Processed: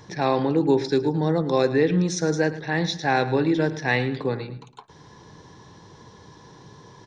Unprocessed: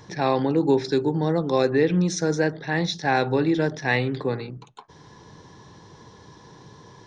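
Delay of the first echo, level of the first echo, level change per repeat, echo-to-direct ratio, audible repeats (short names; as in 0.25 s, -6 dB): 0.109 s, -15.0 dB, -8.5 dB, -14.5 dB, 2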